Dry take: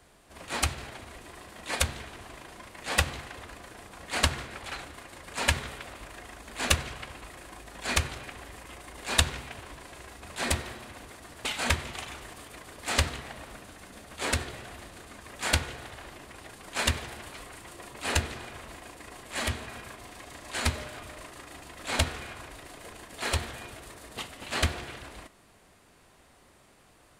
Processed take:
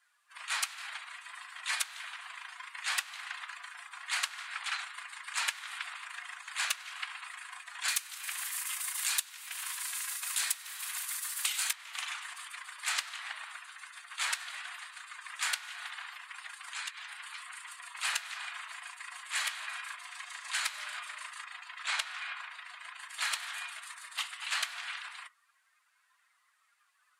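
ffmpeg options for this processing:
ffmpeg -i in.wav -filter_complex "[0:a]asettb=1/sr,asplit=3[link_01][link_02][link_03];[link_01]atrim=end=7.884[link_04];[link_02]atrim=start=7.88:end=11.73,asetpts=PTS-STARTPTS,afade=type=in:duration=0.004:curve=qsin,afade=type=out:start_time=3.846:duration=0.004:curve=qsin,aemphasis=mode=production:type=75fm[link_05];[link_03]atrim=start=11.726[link_06];[link_04][link_05]acrossfade=duration=0.004:curve1=hsin:curve2=qsin[link_07];[link_07][link_06]acrossfade=duration=0.004:curve1=qsin:curve2=hsin,asettb=1/sr,asplit=3[link_08][link_09][link_10];[link_08]atrim=end=16.724[link_11];[link_09]atrim=start=16.72:end=17.92,asetpts=PTS-STARTPTS,afade=type=in:duration=0.004:curve=qsin,afade=type=out:start_time=1.196:duration=0.004:curve=qsin,acompressor=threshold=-42dB:ratio=4:attack=3.2:release=140:knee=1:detection=peak[link_12];[link_10]atrim=start=17.916[link_13];[link_11][link_12]acrossfade=duration=0.004:curve1=hsin:curve2=qsin[link_14];[link_14][link_13]acrossfade=duration=0.004:curve1=qsin:curve2=hsin,asettb=1/sr,asplit=3[link_15][link_16][link_17];[link_15]atrim=end=21.444[link_18];[link_16]atrim=start=21.44:end=23,asetpts=PTS-STARTPTS,afade=type=in:duration=0.004:curve=qsin,afade=type=out:start_time=1.556:duration=0.004:curve=qsin,highshelf=frequency=7600:gain=-9[link_19];[link_17]atrim=start=22.996[link_20];[link_18][link_19]acrossfade=duration=0.004:curve1=hsin:curve2=qsin[link_21];[link_21][link_20]acrossfade=duration=0.004:curve1=qsin:curve2=hsin,highpass=frequency=1100:width=0.5412,highpass=frequency=1100:width=1.3066,afftdn=noise_reduction=18:noise_floor=-56,acompressor=threshold=-35dB:ratio=12,volume=5.5dB" out.wav

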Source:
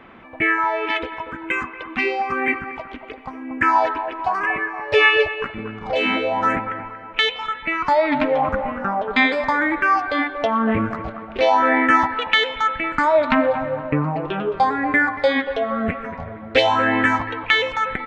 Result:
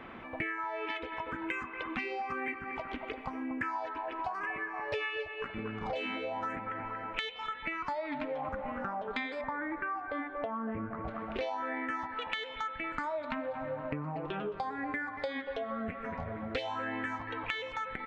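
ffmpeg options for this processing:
ffmpeg -i in.wav -filter_complex "[0:a]asettb=1/sr,asplit=3[link_01][link_02][link_03];[link_01]atrim=end=9.414[link_04];[link_02]atrim=start=9.41:end=11.08,asetpts=PTS-STARTPTS,afade=type=in:duration=0.004:curve=qsin,afade=type=out:start_time=1.666:duration=0.004:curve=qsin,lowpass=1700[link_05];[link_03]atrim=start=11.076[link_06];[link_04][link_05]acrossfade=duration=0.004:curve1=hsin:curve2=qsin[link_07];[link_07][link_06]acrossfade=duration=0.004:curve1=qsin:curve2=hsin,bandreject=frequency=198.4:width_type=h:width=4,bandreject=frequency=396.8:width_type=h:width=4,bandreject=frequency=595.2:width_type=h:width=4,bandreject=frequency=793.6:width_type=h:width=4,bandreject=frequency=992:width_type=h:width=4,bandreject=frequency=1190.4:width_type=h:width=4,bandreject=frequency=1388.8:width_type=h:width=4,bandreject=frequency=1587.2:width_type=h:width=4,bandreject=frequency=1785.6:width_type=h:width=4,bandreject=frequency=1984:width_type=h:width=4,bandreject=frequency=2182.4:width_type=h:width=4,bandreject=frequency=2380.8:width_type=h:width=4,bandreject=frequency=2579.2:width_type=h:width=4,bandreject=frequency=2777.6:width_type=h:width=4,bandreject=frequency=2976:width_type=h:width=4,bandreject=frequency=3174.4:width_type=h:width=4,bandreject=frequency=3372.8:width_type=h:width=4,bandreject=frequency=3571.2:width_type=h:width=4,bandreject=frequency=3769.6:width_type=h:width=4,acompressor=threshold=-32dB:ratio=8,volume=-2dB" out.wav

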